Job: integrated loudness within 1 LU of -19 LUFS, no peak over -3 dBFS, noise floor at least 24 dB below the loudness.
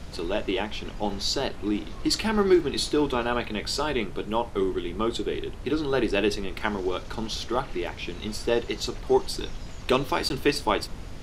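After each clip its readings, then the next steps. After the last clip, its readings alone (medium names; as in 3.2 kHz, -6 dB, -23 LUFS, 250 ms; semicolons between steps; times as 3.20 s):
dropouts 1; longest dropout 11 ms; noise floor -39 dBFS; noise floor target -51 dBFS; loudness -27.0 LUFS; peak level -7.0 dBFS; loudness target -19.0 LUFS
-> interpolate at 10.29 s, 11 ms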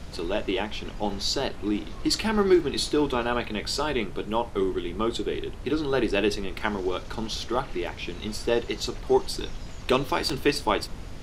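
dropouts 0; noise floor -39 dBFS; noise floor target -51 dBFS
-> noise print and reduce 12 dB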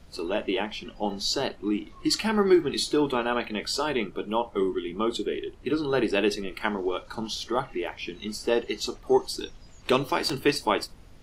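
noise floor -49 dBFS; noise floor target -52 dBFS
-> noise print and reduce 6 dB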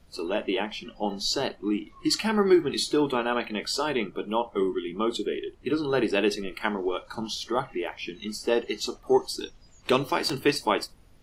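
noise floor -55 dBFS; loudness -27.5 LUFS; peak level -7.5 dBFS; loudness target -19.0 LUFS
-> trim +8.5 dB; peak limiter -3 dBFS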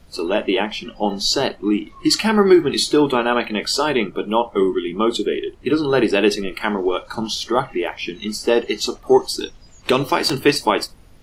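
loudness -19.5 LUFS; peak level -3.0 dBFS; noise floor -46 dBFS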